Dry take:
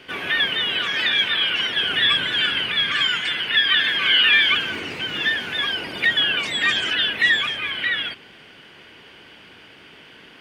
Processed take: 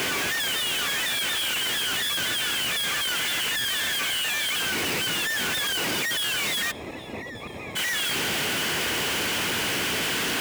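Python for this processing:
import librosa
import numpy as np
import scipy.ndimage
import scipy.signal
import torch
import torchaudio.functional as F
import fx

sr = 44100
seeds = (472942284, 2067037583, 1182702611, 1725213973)

y = np.sign(x) * np.sqrt(np.mean(np.square(x)))
y = fx.moving_average(y, sr, points=29, at=(6.7, 7.75), fade=0.02)
y = 10.0 ** (-25.5 / 20.0) * np.tanh(y / 10.0 ** (-25.5 / 20.0))
y = scipy.signal.sosfilt(scipy.signal.butter(2, 60.0, 'highpass', fs=sr, output='sos'), y)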